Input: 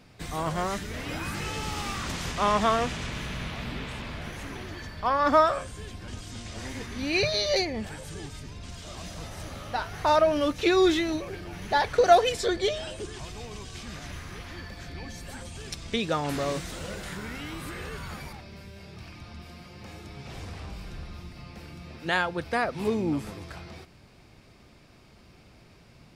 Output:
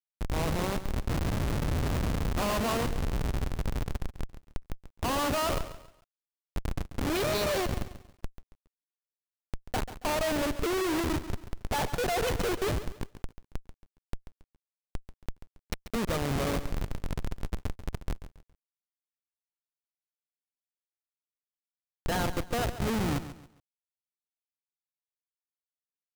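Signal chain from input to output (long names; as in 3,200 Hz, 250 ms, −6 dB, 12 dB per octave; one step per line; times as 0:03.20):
in parallel at −1 dB: downward compressor 6 to 1, threshold −37 dBFS, peak gain reduction 22.5 dB
on the sum: comparator with hysteresis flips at −24 dBFS
feedback echo at a low word length 138 ms, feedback 35%, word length 9 bits, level −12.5 dB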